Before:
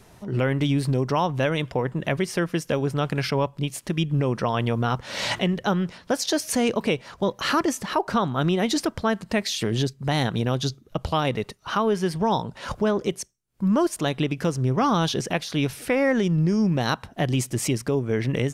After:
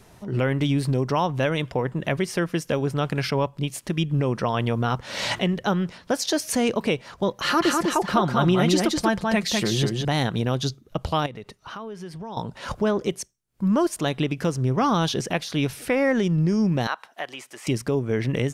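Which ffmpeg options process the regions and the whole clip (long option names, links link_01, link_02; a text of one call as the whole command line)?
ffmpeg -i in.wav -filter_complex "[0:a]asettb=1/sr,asplit=3[link_01][link_02][link_03];[link_01]atrim=end=7.424[link_04];[link_02]atrim=start=7.42:end=10.05,asetpts=PTS-STARTPTS,afade=type=in:duration=0.004:curve=qsin,afade=type=out:start_time=2.626:duration=0.004:curve=qsin,aecho=1:1:5.7:0.46,atrim=end_sample=115983,aecho=1:1:200:0.708,atrim=end_sample=115983[link_05];[link_03]atrim=start=10.046[link_06];[link_04][link_05]acrossfade=duration=0.004:curve1=hsin:curve2=qsin[link_07];[link_07][link_06]acrossfade=duration=0.004:curve1=qsin:curve2=hsin,asettb=1/sr,asplit=3[link_08][link_09][link_10];[link_08]atrim=end=11.264[link_11];[link_09]atrim=start=11.26:end=12.37,asetpts=PTS-STARTPTS,afade=type=in:duration=0.004:curve=qsin,afade=type=out:start_time=1.106:duration=0.004:curve=qsin,highshelf=frequency=8300:gain=-5.5,acompressor=threshold=-37dB:ratio=3:attack=3.2:release=140:knee=1:detection=peak[link_12];[link_10]atrim=start=12.366[link_13];[link_11][link_12]acrossfade=duration=0.004:curve1=hsin:curve2=qsin[link_14];[link_14][link_13]acrossfade=duration=0.004:curve1=qsin:curve2=hsin,asettb=1/sr,asplit=3[link_15][link_16][link_17];[link_15]atrim=end=16.874[link_18];[link_16]atrim=start=16.87:end=17.67,asetpts=PTS-STARTPTS,afade=type=in:duration=0.004:curve=qsin,afade=type=out:start_time=0.796:duration=0.004:curve=qsin,acrossover=split=2800[link_19][link_20];[link_20]acompressor=threshold=-45dB:ratio=4:attack=1:release=60[link_21];[link_19][link_21]amix=inputs=2:normalize=0,highpass=830[link_22];[link_17]atrim=start=17.666[link_23];[link_18][link_22]acrossfade=duration=0.004:curve1=hsin:curve2=qsin[link_24];[link_24][link_23]acrossfade=duration=0.004:curve1=qsin:curve2=hsin" out.wav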